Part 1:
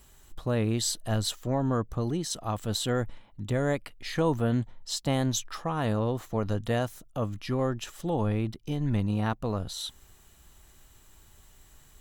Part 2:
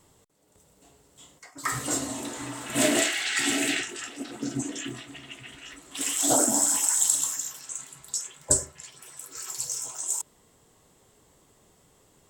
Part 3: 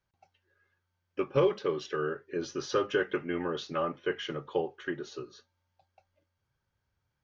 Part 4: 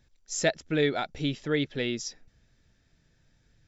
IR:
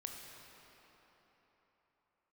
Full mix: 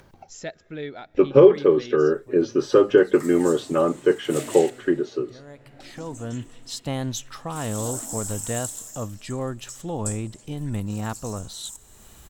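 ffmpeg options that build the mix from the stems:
-filter_complex "[0:a]adelay=1800,volume=-1.5dB,asplit=2[link_01][link_02];[link_02]volume=-21.5dB[link_03];[1:a]highshelf=frequency=6200:gain=7.5,adelay=1550,volume=-17dB,asplit=3[link_04][link_05][link_06];[link_04]atrim=end=4.7,asetpts=PTS-STARTPTS,afade=type=out:start_time=4.696:duration=0.004:curve=hsin[link_07];[link_05]atrim=start=4.7:end=5.8,asetpts=PTS-STARTPTS,volume=0[link_08];[link_06]atrim=start=5.8,asetpts=PTS-STARTPTS,afade=type=in:duration=0.004:curve=hsin[link_09];[link_07][link_08][link_09]concat=n=3:v=0:a=1,asplit=2[link_10][link_11];[link_11]volume=-3.5dB[link_12];[2:a]equalizer=frequency=320:width=0.46:gain=13.5,volume=1.5dB,asplit=2[link_13][link_14];[3:a]agate=range=-33dB:threshold=-57dB:ratio=3:detection=peak,highshelf=frequency=3400:gain=-7,volume=-8.5dB,asplit=2[link_15][link_16];[link_16]volume=-21dB[link_17];[link_14]apad=whole_len=608759[link_18];[link_01][link_18]sidechaincompress=threshold=-45dB:ratio=8:attack=16:release=850[link_19];[4:a]atrim=start_sample=2205[link_20];[link_03][link_12][link_17]amix=inputs=3:normalize=0[link_21];[link_21][link_20]afir=irnorm=-1:irlink=0[link_22];[link_19][link_10][link_13][link_15][link_22]amix=inputs=5:normalize=0,acompressor=mode=upward:threshold=-37dB:ratio=2.5"

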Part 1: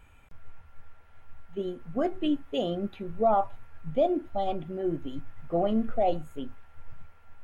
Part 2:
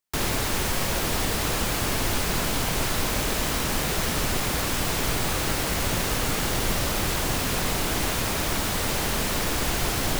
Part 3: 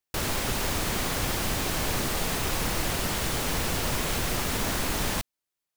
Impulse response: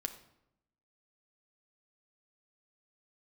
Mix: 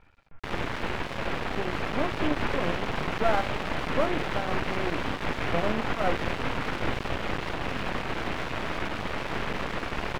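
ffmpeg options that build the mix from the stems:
-filter_complex "[0:a]volume=0.5dB,asplit=2[link_01][link_02];[link_02]volume=-10.5dB[link_03];[1:a]adelay=300,volume=1.5dB[link_04];[2:a]asplit=2[link_05][link_06];[link_06]afreqshift=1.4[link_07];[link_05][link_07]amix=inputs=2:normalize=1,adelay=1950,volume=0.5dB[link_08];[3:a]atrim=start_sample=2205[link_09];[link_03][link_09]afir=irnorm=-1:irlink=0[link_10];[link_01][link_04][link_08][link_10]amix=inputs=4:normalize=0,lowpass=frequency=2700:width=0.5412,lowpass=frequency=2700:width=1.3066,lowshelf=frequency=99:gain=-7,aeval=exprs='max(val(0),0)':channel_layout=same"

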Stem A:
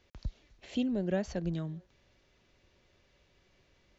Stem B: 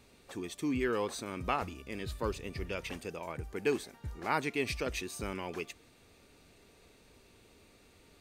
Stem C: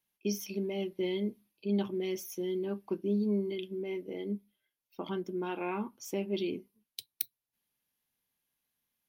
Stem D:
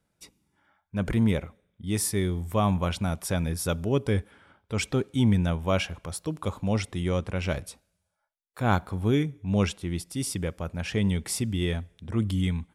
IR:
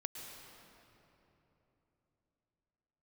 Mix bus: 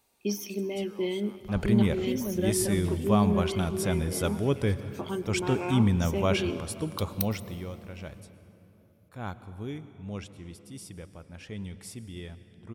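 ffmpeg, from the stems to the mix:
-filter_complex "[0:a]adelay=1300,volume=-1.5dB,asplit=2[link_01][link_02];[link_02]volume=-9dB[link_03];[1:a]aemphasis=mode=production:type=75fm,acompressor=threshold=-38dB:ratio=4,equalizer=frequency=840:width=1.5:gain=12,volume=-15.5dB[link_04];[2:a]asoftclip=type=hard:threshold=-17dB,volume=0.5dB,asplit=2[link_05][link_06];[link_06]volume=-7.5dB[link_07];[3:a]adelay=550,volume=-4dB,afade=type=out:start_time=7.06:duration=0.63:silence=0.251189,asplit=2[link_08][link_09];[link_09]volume=-5.5dB[link_10];[4:a]atrim=start_sample=2205[link_11];[link_07][link_10]amix=inputs=2:normalize=0[link_12];[link_12][link_11]afir=irnorm=-1:irlink=0[link_13];[link_03]aecho=0:1:921:1[link_14];[link_01][link_04][link_05][link_08][link_13][link_14]amix=inputs=6:normalize=0"

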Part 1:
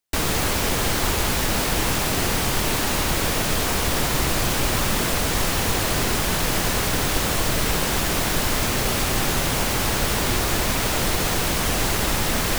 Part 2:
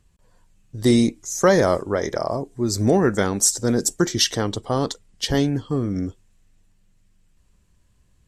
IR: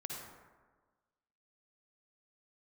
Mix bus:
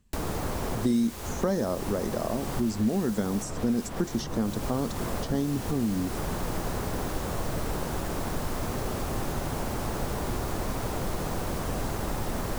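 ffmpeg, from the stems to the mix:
-filter_complex "[0:a]volume=-9dB,asplit=2[link_01][link_02];[link_02]volume=-4.5dB[link_03];[1:a]equalizer=frequency=220:width_type=o:width=0.36:gain=13.5,volume=-5.5dB,asplit=2[link_04][link_05];[link_05]apad=whole_len=555040[link_06];[link_01][link_06]sidechaincompress=threshold=-35dB:ratio=8:attack=31:release=169[link_07];[2:a]atrim=start_sample=2205[link_08];[link_03][link_08]afir=irnorm=-1:irlink=0[link_09];[link_07][link_04][link_09]amix=inputs=3:normalize=0,acrossover=split=1300|4300[link_10][link_11][link_12];[link_10]acompressor=threshold=-24dB:ratio=4[link_13];[link_11]acompressor=threshold=-52dB:ratio=4[link_14];[link_12]acompressor=threshold=-43dB:ratio=4[link_15];[link_13][link_14][link_15]amix=inputs=3:normalize=0"

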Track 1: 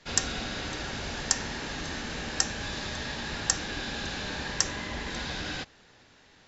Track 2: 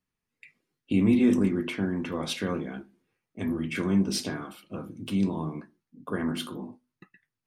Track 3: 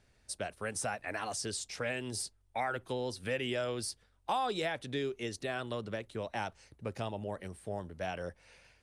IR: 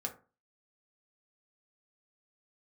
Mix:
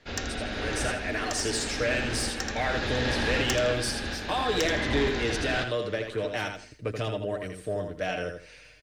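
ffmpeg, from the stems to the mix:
-filter_complex "[0:a]lowpass=frequency=2100:poles=1,volume=2.5dB,asplit=2[link_01][link_02];[link_02]volume=-14.5dB[link_03];[1:a]highpass=frequency=1000:poles=1,volume=-17dB,asplit=2[link_04][link_05];[2:a]equalizer=frequency=830:width=7.3:gain=-11.5,aecho=1:1:6.6:0.53,volume=-1dB,asplit=2[link_06][link_07];[link_07]volume=-6.5dB[link_08];[link_05]apad=whole_len=285761[link_09];[link_01][link_09]sidechaincompress=threshold=-56dB:ratio=8:attack=16:release=885[link_10];[link_03][link_08]amix=inputs=2:normalize=0,aecho=0:1:81|162|243|324:1|0.23|0.0529|0.0122[link_11];[link_10][link_04][link_06][link_11]amix=inputs=4:normalize=0,equalizer=frequency=160:width_type=o:width=0.67:gain=-8,equalizer=frequency=1000:width_type=o:width=0.67:gain=-6,equalizer=frequency=10000:width_type=o:width=0.67:gain=-7,dynaudnorm=framelen=490:gausssize=3:maxgain=10dB,asoftclip=type=tanh:threshold=-18dB"

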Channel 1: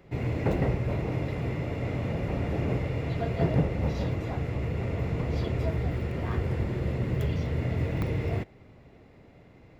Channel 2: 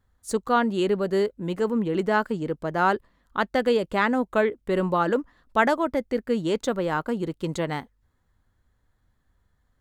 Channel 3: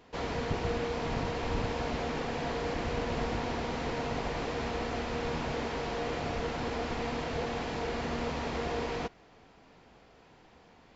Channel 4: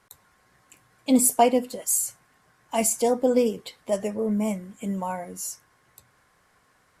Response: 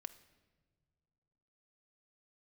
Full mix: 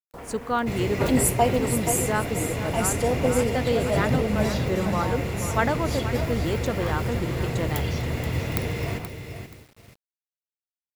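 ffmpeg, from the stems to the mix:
-filter_complex "[0:a]crystalizer=i=5.5:c=0,adelay=550,volume=0dB,asplit=2[link_01][link_02];[link_02]volume=-8.5dB[link_03];[1:a]volume=-3.5dB,asplit=2[link_04][link_05];[link_05]volume=-12dB[link_06];[2:a]afwtdn=0.00631,alimiter=level_in=5.5dB:limit=-24dB:level=0:latency=1,volume=-5.5dB,volume=-2dB[link_07];[3:a]volume=-3dB,asplit=3[link_08][link_09][link_10];[link_09]volume=-8dB[link_11];[link_10]apad=whole_len=432369[link_12];[link_04][link_12]sidechaincompress=threshold=-30dB:ratio=8:attack=16:release=121[link_13];[link_03][link_06][link_11]amix=inputs=3:normalize=0,aecho=0:1:478|956|1434|1912:1|0.27|0.0729|0.0197[link_14];[link_01][link_13][link_07][link_08][link_14]amix=inputs=5:normalize=0,agate=range=-22dB:threshold=-45dB:ratio=16:detection=peak,acrusher=bits=8:mix=0:aa=0.000001"

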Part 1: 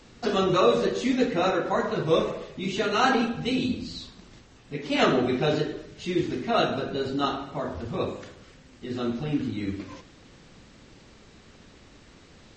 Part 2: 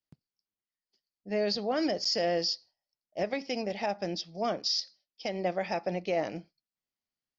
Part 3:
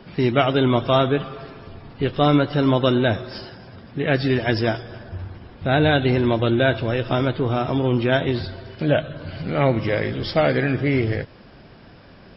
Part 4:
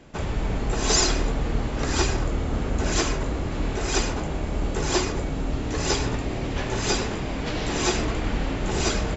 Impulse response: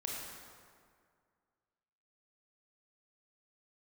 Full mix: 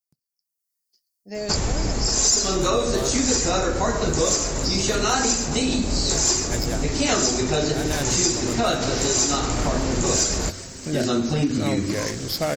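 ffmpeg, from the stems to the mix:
-filter_complex "[0:a]adelay=2100,volume=1.5dB[link_01];[1:a]volume=-11.5dB,asplit=2[link_02][link_03];[2:a]adynamicsmooth=sensitivity=6:basefreq=3500,adelay=2050,volume=-15dB[link_04];[3:a]adelay=1350,volume=-3.5dB[link_05];[link_03]apad=whole_len=635708[link_06];[link_04][link_06]sidechaincompress=threshold=-43dB:ratio=8:attack=16:release=390[link_07];[link_01][link_02][link_07][link_05]amix=inputs=4:normalize=0,dynaudnorm=framelen=160:gausssize=7:maxgain=10dB,aexciter=amount=7.9:drive=3.1:freq=4700,acompressor=threshold=-19dB:ratio=4"

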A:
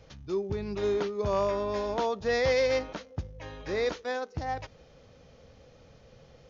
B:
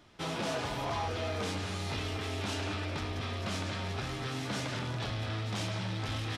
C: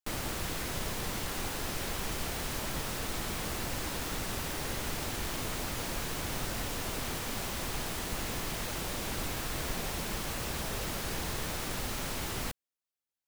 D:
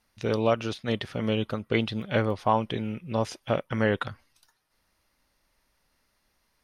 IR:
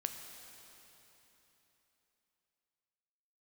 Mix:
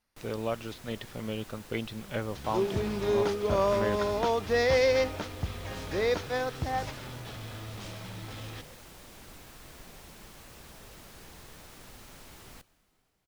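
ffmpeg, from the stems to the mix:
-filter_complex "[0:a]adelay=2250,volume=1.5dB[link_01];[1:a]alimiter=level_in=11.5dB:limit=-24dB:level=0:latency=1,volume=-11.5dB,adelay=2250,volume=1dB[link_02];[2:a]adelay=100,volume=-16.5dB,asplit=2[link_03][link_04];[link_04]volume=-9dB[link_05];[3:a]volume=-8.5dB[link_06];[4:a]atrim=start_sample=2205[link_07];[link_05][link_07]afir=irnorm=-1:irlink=0[link_08];[link_01][link_02][link_03][link_06][link_08]amix=inputs=5:normalize=0"

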